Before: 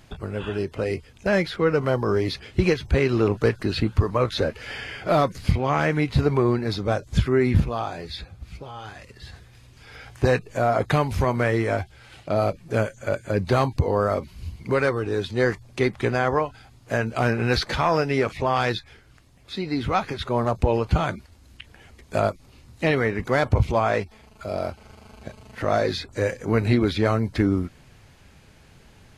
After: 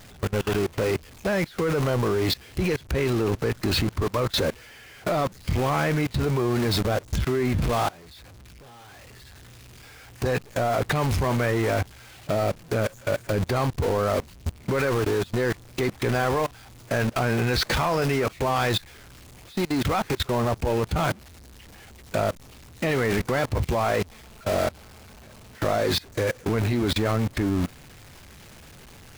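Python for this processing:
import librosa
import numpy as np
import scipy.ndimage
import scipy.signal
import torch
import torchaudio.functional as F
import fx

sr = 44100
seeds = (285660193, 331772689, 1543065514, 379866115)

y = x + 0.5 * 10.0 ** (-22.5 / 20.0) * np.sign(x)
y = fx.level_steps(y, sr, step_db=24)
y = y * librosa.db_to_amplitude(1.0)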